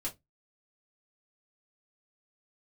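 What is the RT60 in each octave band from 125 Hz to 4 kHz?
0.30, 0.25, 0.20, 0.15, 0.15, 0.15 seconds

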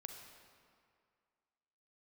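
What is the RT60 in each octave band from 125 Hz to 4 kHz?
2.0, 2.1, 2.1, 2.2, 2.0, 1.5 seconds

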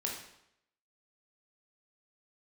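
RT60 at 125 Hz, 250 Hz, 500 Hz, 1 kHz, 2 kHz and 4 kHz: 0.70, 0.75, 0.75, 0.75, 0.75, 0.70 seconds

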